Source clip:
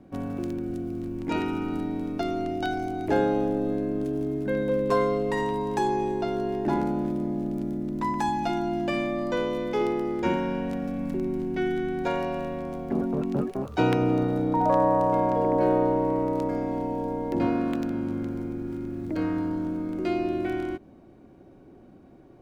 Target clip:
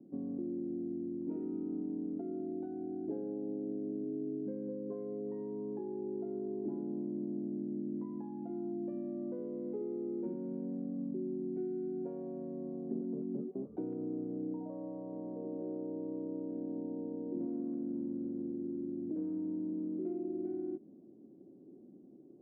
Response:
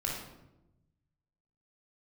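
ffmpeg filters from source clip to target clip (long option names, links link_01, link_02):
-af "acompressor=threshold=-30dB:ratio=6,asuperpass=centerf=280:order=4:qfactor=1.1,volume=-3.5dB"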